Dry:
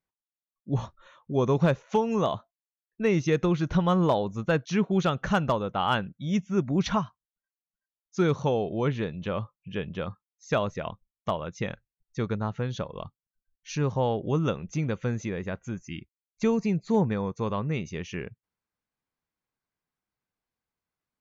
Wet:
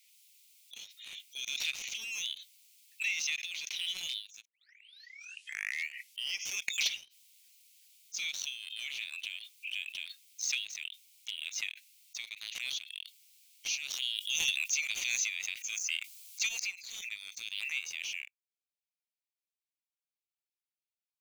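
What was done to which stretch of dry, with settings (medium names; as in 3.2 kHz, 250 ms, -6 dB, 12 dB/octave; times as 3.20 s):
4.45 s: tape start 2.08 s
14.02–16.49 s: treble shelf 2.4 kHz +11 dB
whole clip: steep high-pass 2.2 kHz 72 dB/octave; waveshaping leveller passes 2; swell ahead of each attack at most 25 dB/s; trim -2 dB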